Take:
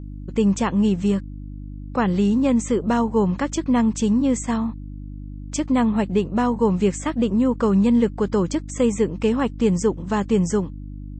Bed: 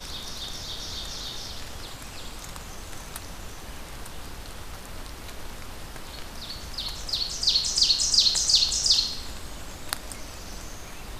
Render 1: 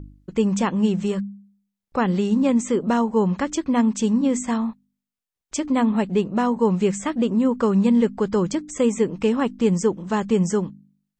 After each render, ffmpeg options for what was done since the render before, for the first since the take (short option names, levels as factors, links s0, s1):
-af "bandreject=f=50:t=h:w=4,bandreject=f=100:t=h:w=4,bandreject=f=150:t=h:w=4,bandreject=f=200:t=h:w=4,bandreject=f=250:t=h:w=4,bandreject=f=300:t=h:w=4"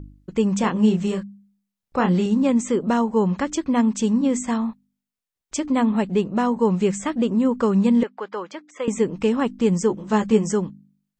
-filter_complex "[0:a]asettb=1/sr,asplit=3[s0][s1][s2];[s0]atrim=end=0.614[s3];[s1]atrim=start=0.61:end=2.26,asetpts=PTS-STARTPTS,afade=t=in:d=0.004:c=qsin,afade=t=out:st=1.646:d=0.004:c=qsin,asplit=2[s4][s5];[s5]adelay=28,volume=0.562[s6];[s4][s6]amix=inputs=2:normalize=0,atrim=end_sample=72765[s7];[s2]atrim=start=2.256[s8];[s3][s7]acrossfade=d=0.004:c1=hsin:c2=qsin[s9];[s9][s8]acrossfade=d=0.004:c1=qsin:c2=hsin,asettb=1/sr,asplit=3[s10][s11][s12];[s10]atrim=end=8.034[s13];[s11]atrim=start=8.03:end=8.88,asetpts=PTS-STARTPTS,afade=t=in:d=0.004:c=qsin,afade=t=out:st=0.846:d=0.004:c=qsin,highpass=680,lowpass=2900[s14];[s12]atrim=start=8.876[s15];[s13][s14]acrossfade=d=0.004:c1=hsin:c2=qsin[s16];[s16][s15]acrossfade=d=0.004:c1=qsin:c2=hsin,asettb=1/sr,asplit=3[s17][s18][s19];[s17]atrim=end=9.884[s20];[s18]atrim=start=9.88:end=10.52,asetpts=PTS-STARTPTS,afade=t=in:d=0.004:c=qsin,afade=t=out:st=0.636:d=0.004:c=qsin,asplit=2[s21][s22];[s22]adelay=14,volume=0.631[s23];[s21][s23]amix=inputs=2:normalize=0,atrim=end_sample=28224[s24];[s19]atrim=start=10.516[s25];[s20][s24]acrossfade=d=0.004:c1=hsin:c2=qsin[s26];[s26][s25]acrossfade=d=0.004:c1=qsin:c2=hsin"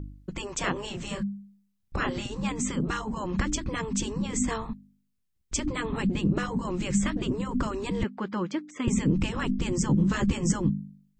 -af "afftfilt=real='re*lt(hypot(re,im),0.316)':imag='im*lt(hypot(re,im),0.316)':win_size=1024:overlap=0.75,asubboost=boost=9:cutoff=220"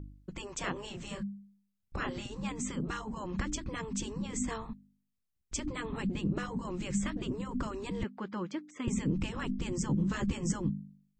-af "volume=0.447"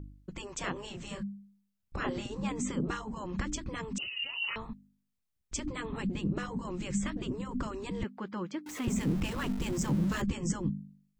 -filter_complex "[0:a]asettb=1/sr,asplit=3[s0][s1][s2];[s0]atrim=end=2.044[s3];[s1]atrim=start=2.04:end=2.95,asetpts=PTS-STARTPTS,afade=t=in:d=0.004:c=qsin,afade=t=out:st=0.906:d=0.004:c=qsin,equalizer=f=440:w=0.49:g=5[s4];[s2]atrim=start=2.946[s5];[s3][s4]acrossfade=d=0.004:c1=hsin:c2=qsin[s6];[s6][s5]acrossfade=d=0.004:c1=qsin:c2=hsin,asettb=1/sr,asplit=3[s7][s8][s9];[s7]atrim=end=3.984[s10];[s8]atrim=start=3.98:end=4.56,asetpts=PTS-STARTPTS,afade=t=in:d=0.004:c=qsin,afade=t=out:st=0.576:d=0.004:c=qsin,lowpass=f=2600:t=q:w=0.5098,lowpass=f=2600:t=q:w=0.6013,lowpass=f=2600:t=q:w=0.9,lowpass=f=2600:t=q:w=2.563,afreqshift=-3000[s11];[s9]atrim=start=4.556[s12];[s10][s11]acrossfade=d=0.004:c1=hsin:c2=qsin[s13];[s13][s12]acrossfade=d=0.004:c1=qsin:c2=hsin,asettb=1/sr,asplit=3[s14][s15][s16];[s14]atrim=end=8.664[s17];[s15]atrim=start=8.66:end=10.22,asetpts=PTS-STARTPTS,afade=t=in:d=0.004:c=qsin,afade=t=out:st=1.556:d=0.004:c=qsin,aeval=exprs='val(0)+0.5*0.0119*sgn(val(0))':c=same[s18];[s16]atrim=start=10.216[s19];[s17][s18]acrossfade=d=0.004:c1=hsin:c2=qsin[s20];[s20][s19]acrossfade=d=0.004:c1=qsin:c2=hsin"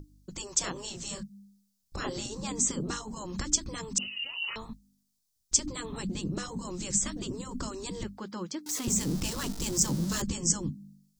-af "highshelf=f=3500:t=q:w=1.5:g=12,bandreject=f=50:t=h:w=6,bandreject=f=100:t=h:w=6,bandreject=f=150:t=h:w=6,bandreject=f=200:t=h:w=6,bandreject=f=250:t=h:w=6"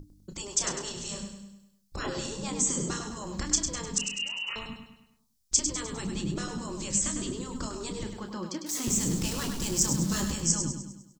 -filter_complex "[0:a]asplit=2[s0][s1];[s1]adelay=30,volume=0.355[s2];[s0][s2]amix=inputs=2:normalize=0,aecho=1:1:101|202|303|404|505|606:0.447|0.21|0.0987|0.0464|0.0218|0.0102"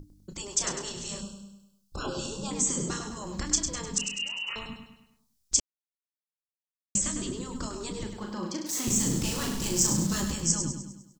-filter_complex "[0:a]asettb=1/sr,asplit=3[s0][s1][s2];[s0]atrim=end=1.214[s3];[s1]atrim=start=1.21:end=2.51,asetpts=PTS-STARTPTS,afade=t=in:d=0.004:c=qsin,afade=t=out:st=1.296:d=0.004:c=qsin,asuperstop=centerf=2000:order=12:qfactor=2.1[s4];[s2]atrim=start=2.506[s5];[s3][s4]acrossfade=d=0.004:c1=hsin:c2=qsin[s6];[s6][s5]acrossfade=d=0.004:c1=qsin:c2=hsin,asettb=1/sr,asplit=3[s7][s8][s9];[s7]atrim=end=8.174[s10];[s8]atrim=start=8.17:end=10.07,asetpts=PTS-STARTPTS,afade=t=in:d=0.004:c=qsin,afade=t=out:st=1.896:d=0.004:c=qsin,asplit=2[s11][s12];[s12]adelay=39,volume=0.631[s13];[s11][s13]amix=inputs=2:normalize=0,atrim=end_sample=83790[s14];[s9]atrim=start=10.066[s15];[s10][s14]acrossfade=d=0.004:c1=hsin:c2=qsin[s16];[s16][s15]acrossfade=d=0.004:c1=qsin:c2=hsin,asplit=3[s17][s18][s19];[s17]atrim=end=5.6,asetpts=PTS-STARTPTS,afade=t=out:st=5.596:d=0.004:c=hsin[s20];[s18]atrim=start=5.6:end=6.95,asetpts=PTS-STARTPTS,volume=0[s21];[s19]atrim=start=6.95,asetpts=PTS-STARTPTS,afade=t=in:d=0.004:c=hsin[s22];[s20][s21][s22]concat=n=3:v=0:a=1"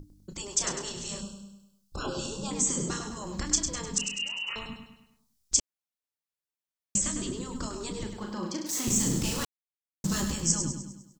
-filter_complex "[0:a]asplit=3[s0][s1][s2];[s0]atrim=end=9.45,asetpts=PTS-STARTPTS,afade=t=out:st=9.446:d=0.004:c=hsin[s3];[s1]atrim=start=9.45:end=10.04,asetpts=PTS-STARTPTS,volume=0[s4];[s2]atrim=start=10.04,asetpts=PTS-STARTPTS,afade=t=in:d=0.004:c=hsin[s5];[s3][s4][s5]concat=n=3:v=0:a=1"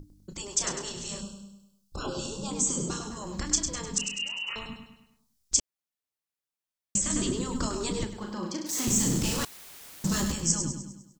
-filter_complex "[0:a]asettb=1/sr,asplit=3[s0][s1][s2];[s0]atrim=end=1.464[s3];[s1]atrim=start=1.46:end=3.1,asetpts=PTS-STARTPTS,afade=t=in:d=0.004:c=qsin,afade=t=out:st=1.636:d=0.004:c=qsin,equalizer=f=1900:t=o:w=0.3:g=-14[s4];[s2]atrim=start=3.096[s5];[s3][s4]acrossfade=d=0.004:c1=hsin:c2=qsin[s6];[s6][s5]acrossfade=d=0.004:c1=qsin:c2=hsin,asettb=1/sr,asplit=3[s7][s8][s9];[s7]atrim=end=7.104[s10];[s8]atrim=start=7.1:end=8.05,asetpts=PTS-STARTPTS,afade=t=in:d=0.004:c=qsin,afade=t=out:st=0.946:d=0.004:c=qsin,acontrast=28[s11];[s9]atrim=start=8.046[s12];[s10][s11]acrossfade=d=0.004:c1=hsin:c2=qsin[s13];[s13][s12]acrossfade=d=0.004:c1=qsin:c2=hsin,asettb=1/sr,asplit=3[s14][s15][s16];[s14]atrim=end=8.784[s17];[s15]atrim=start=8.78:end=10.32,asetpts=PTS-STARTPTS,afade=t=in:d=0.004:c=qsin,afade=t=out:st=1.536:d=0.004:c=qsin,aeval=exprs='val(0)+0.5*0.0168*sgn(val(0))':c=same[s18];[s16]atrim=start=10.316[s19];[s17][s18]acrossfade=d=0.004:c1=hsin:c2=qsin[s20];[s20][s19]acrossfade=d=0.004:c1=qsin:c2=hsin"